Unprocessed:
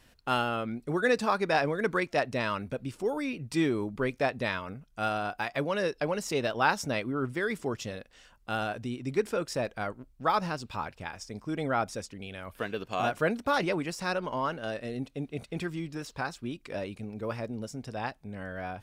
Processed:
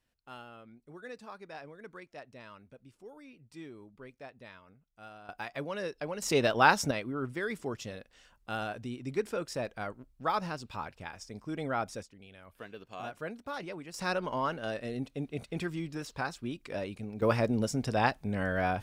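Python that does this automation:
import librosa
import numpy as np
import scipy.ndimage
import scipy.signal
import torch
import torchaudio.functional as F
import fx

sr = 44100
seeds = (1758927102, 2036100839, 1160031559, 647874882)

y = fx.gain(x, sr, db=fx.steps((0.0, -19.5), (5.29, -7.0), (6.22, 3.0), (6.91, -4.0), (12.03, -12.0), (13.94, -1.0), (17.22, 7.5)))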